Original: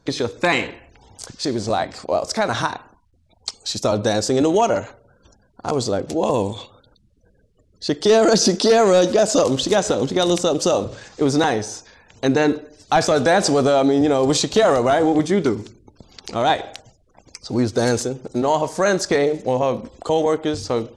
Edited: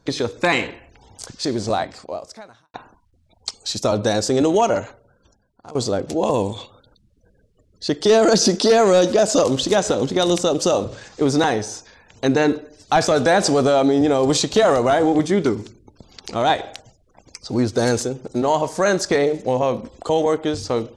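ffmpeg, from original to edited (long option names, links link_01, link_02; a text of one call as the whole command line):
ffmpeg -i in.wav -filter_complex "[0:a]asplit=3[link_01][link_02][link_03];[link_01]atrim=end=2.74,asetpts=PTS-STARTPTS,afade=type=out:start_time=1.74:duration=1:curve=qua[link_04];[link_02]atrim=start=2.74:end=5.75,asetpts=PTS-STARTPTS,afade=type=in:duration=0.004:curve=hsin,afade=type=out:start_time=2.07:duration=0.94:silence=0.11885[link_05];[link_03]atrim=start=5.75,asetpts=PTS-STARTPTS,afade=type=in:duration=0.004:curve=hsin:silence=0.11885[link_06];[link_04][link_05][link_06]concat=n=3:v=0:a=1" out.wav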